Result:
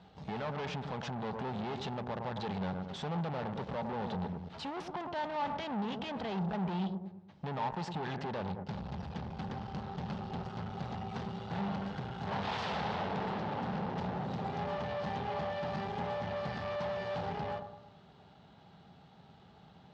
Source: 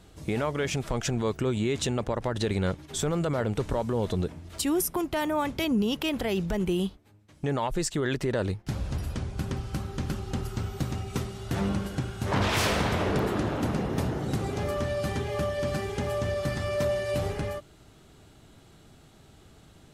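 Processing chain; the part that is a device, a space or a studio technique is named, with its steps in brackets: analogue delay pedal into a guitar amplifier (bucket-brigade echo 108 ms, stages 1024, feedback 46%, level -10.5 dB; valve stage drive 35 dB, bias 0.7; cabinet simulation 100–4400 Hz, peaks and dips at 110 Hz -3 dB, 180 Hz +7 dB, 320 Hz -10 dB, 830 Hz +10 dB, 2.3 kHz -3 dB)

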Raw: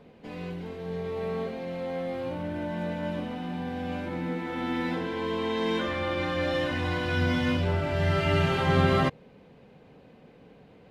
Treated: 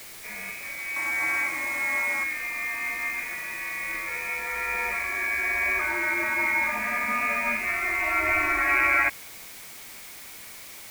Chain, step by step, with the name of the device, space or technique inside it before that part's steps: scrambled radio voice (band-pass 380–2800 Hz; frequency inversion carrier 2.7 kHz; white noise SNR 15 dB); 0.96–2.24 s: ten-band graphic EQ 250 Hz +7 dB, 1 kHz +11 dB, 8 kHz +4 dB; trim +5 dB

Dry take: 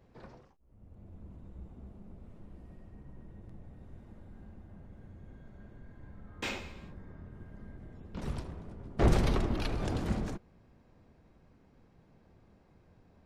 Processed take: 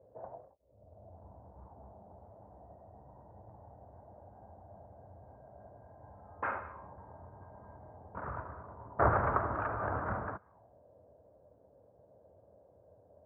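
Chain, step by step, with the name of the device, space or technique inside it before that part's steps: envelope filter bass rig (touch-sensitive low-pass 510–1300 Hz up, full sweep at -38.5 dBFS; cabinet simulation 74–2100 Hz, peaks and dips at 160 Hz -10 dB, 230 Hz -10 dB, 350 Hz -7 dB, 630 Hz +6 dB, 950 Hz +5 dB, 1.6 kHz +5 dB); trim -2 dB

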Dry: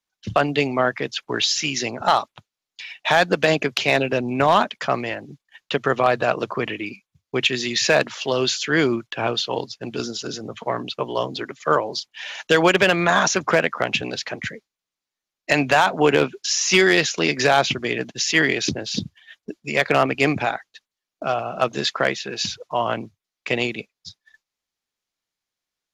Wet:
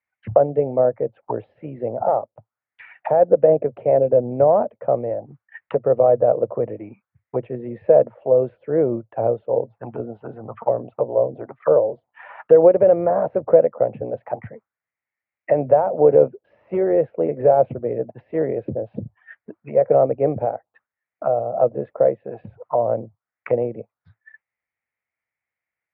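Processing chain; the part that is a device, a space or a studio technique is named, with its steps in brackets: envelope filter bass rig (touch-sensitive low-pass 530–2100 Hz down, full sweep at -22.5 dBFS; cabinet simulation 71–2200 Hz, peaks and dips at 110 Hz +4 dB, 180 Hz -7 dB, 280 Hz -8 dB, 390 Hz -7 dB, 1.1 kHz -5 dB, 1.6 kHz -5 dB)

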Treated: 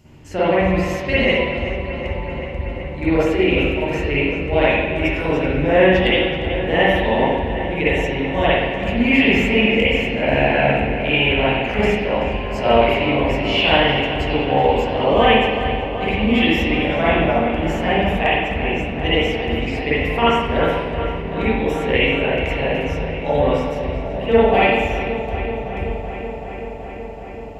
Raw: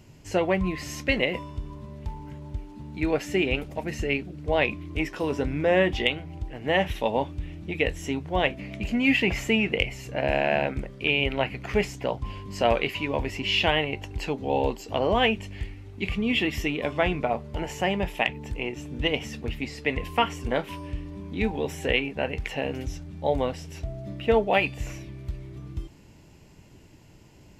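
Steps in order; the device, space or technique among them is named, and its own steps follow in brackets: dub delay into a spring reverb (filtered feedback delay 379 ms, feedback 83%, low-pass 4.7 kHz, level -11 dB; spring tank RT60 1.1 s, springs 43/56 ms, chirp 50 ms, DRR -10 dB); trim -2 dB

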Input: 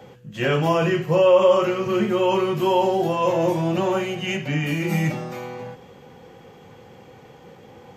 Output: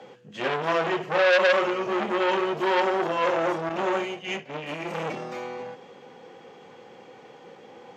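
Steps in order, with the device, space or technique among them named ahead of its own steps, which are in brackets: public-address speaker with an overloaded transformer (transformer saturation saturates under 2.2 kHz; band-pass 270–6500 Hz); 3.69–4.98 s: expander -26 dBFS

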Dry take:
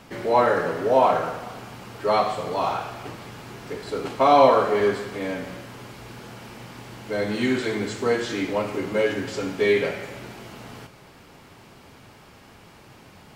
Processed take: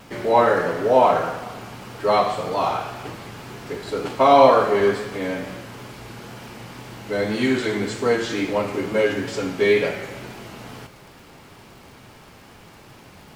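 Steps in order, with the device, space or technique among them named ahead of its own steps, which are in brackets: vinyl LP (wow and flutter; crackle 77 per s -43 dBFS; pink noise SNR 38 dB); trim +2.5 dB

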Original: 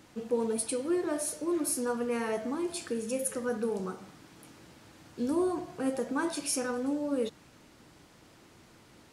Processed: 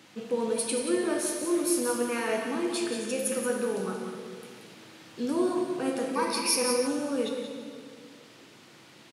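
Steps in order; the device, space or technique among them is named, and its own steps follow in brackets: PA in a hall (high-pass 130 Hz 24 dB/octave; peaking EQ 3.1 kHz +7 dB 1.7 oct; delay 180 ms -8 dB; reverberation RT60 2.1 s, pre-delay 5 ms, DRR 3 dB); 6.15–6.87 s: rippled EQ curve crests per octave 0.87, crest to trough 13 dB

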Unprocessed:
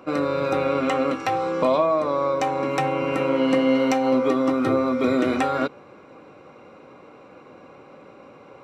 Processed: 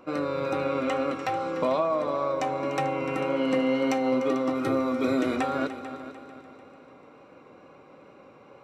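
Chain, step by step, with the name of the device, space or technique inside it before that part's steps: 4.55–5.36 s: treble shelf 6.3 kHz +8 dB; multi-head tape echo (multi-head delay 148 ms, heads second and third, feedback 43%, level -14 dB; wow and flutter 21 cents); trim -5.5 dB

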